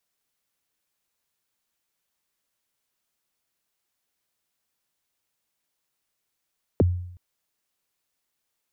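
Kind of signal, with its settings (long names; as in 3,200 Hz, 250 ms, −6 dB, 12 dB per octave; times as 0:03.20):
synth kick length 0.37 s, from 600 Hz, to 89 Hz, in 23 ms, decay 0.71 s, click off, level −13 dB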